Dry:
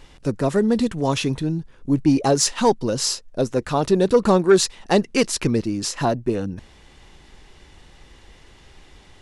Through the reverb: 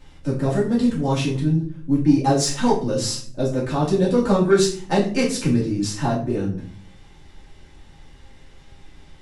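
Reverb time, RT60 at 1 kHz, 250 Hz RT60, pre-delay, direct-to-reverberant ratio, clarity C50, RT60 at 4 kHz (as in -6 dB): 0.50 s, 0.45 s, 0.85 s, 3 ms, -6.5 dB, 7.5 dB, 0.35 s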